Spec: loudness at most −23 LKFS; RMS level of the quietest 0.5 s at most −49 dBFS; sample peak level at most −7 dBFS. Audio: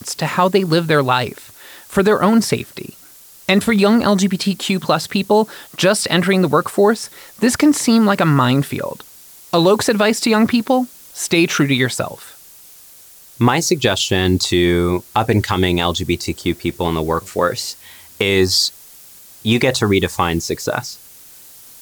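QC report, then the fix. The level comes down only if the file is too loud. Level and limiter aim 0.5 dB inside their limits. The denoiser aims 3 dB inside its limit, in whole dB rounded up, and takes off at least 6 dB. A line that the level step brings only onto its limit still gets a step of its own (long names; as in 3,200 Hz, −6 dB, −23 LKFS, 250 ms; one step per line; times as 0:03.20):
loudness −16.5 LKFS: out of spec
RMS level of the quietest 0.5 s −43 dBFS: out of spec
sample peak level −3.0 dBFS: out of spec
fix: level −7 dB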